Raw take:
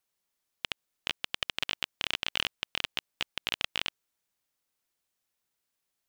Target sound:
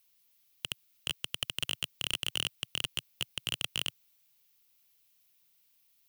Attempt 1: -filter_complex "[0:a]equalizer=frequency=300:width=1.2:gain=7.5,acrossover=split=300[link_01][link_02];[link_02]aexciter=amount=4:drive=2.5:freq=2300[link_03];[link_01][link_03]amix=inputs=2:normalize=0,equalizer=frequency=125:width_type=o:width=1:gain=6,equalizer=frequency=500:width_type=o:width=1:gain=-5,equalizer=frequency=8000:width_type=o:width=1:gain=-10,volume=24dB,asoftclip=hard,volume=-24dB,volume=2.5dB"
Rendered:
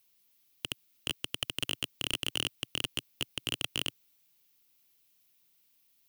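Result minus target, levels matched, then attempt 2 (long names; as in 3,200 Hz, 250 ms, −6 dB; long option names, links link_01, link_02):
250 Hz band +6.5 dB
-filter_complex "[0:a]acrossover=split=300[link_01][link_02];[link_02]aexciter=amount=4:drive=2.5:freq=2300[link_03];[link_01][link_03]amix=inputs=2:normalize=0,equalizer=frequency=125:width_type=o:width=1:gain=6,equalizer=frequency=500:width_type=o:width=1:gain=-5,equalizer=frequency=8000:width_type=o:width=1:gain=-10,volume=24dB,asoftclip=hard,volume=-24dB,volume=2.5dB"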